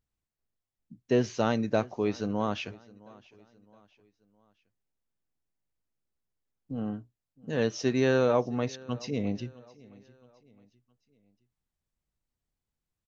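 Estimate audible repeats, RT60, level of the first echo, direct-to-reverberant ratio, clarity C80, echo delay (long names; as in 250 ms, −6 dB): 2, no reverb audible, −23.0 dB, no reverb audible, no reverb audible, 664 ms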